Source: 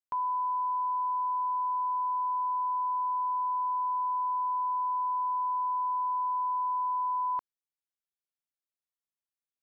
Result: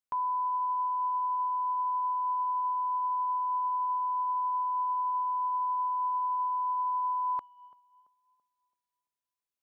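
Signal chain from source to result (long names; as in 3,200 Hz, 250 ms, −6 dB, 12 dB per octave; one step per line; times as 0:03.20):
tape delay 335 ms, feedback 48%, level −19 dB, low-pass 1,100 Hz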